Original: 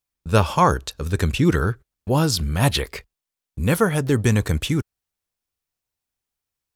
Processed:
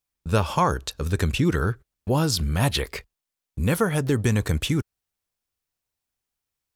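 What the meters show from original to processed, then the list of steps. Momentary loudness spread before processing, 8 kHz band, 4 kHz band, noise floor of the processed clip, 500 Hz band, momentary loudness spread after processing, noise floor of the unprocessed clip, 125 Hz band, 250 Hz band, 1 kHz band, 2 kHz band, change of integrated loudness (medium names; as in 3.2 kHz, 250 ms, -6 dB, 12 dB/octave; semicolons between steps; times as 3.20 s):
8 LU, -2.5 dB, -2.0 dB, under -85 dBFS, -3.5 dB, 9 LU, under -85 dBFS, -3.0 dB, -3.0 dB, -4.5 dB, -3.0 dB, -3.0 dB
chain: compression 2:1, threshold -20 dBFS, peak gain reduction 5.5 dB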